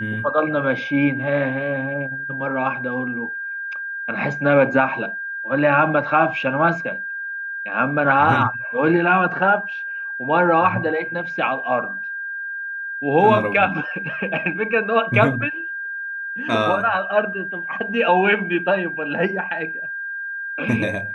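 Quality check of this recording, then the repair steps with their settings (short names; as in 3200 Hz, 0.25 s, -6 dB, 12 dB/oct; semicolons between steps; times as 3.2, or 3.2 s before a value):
tone 1600 Hz -26 dBFS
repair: notch 1600 Hz, Q 30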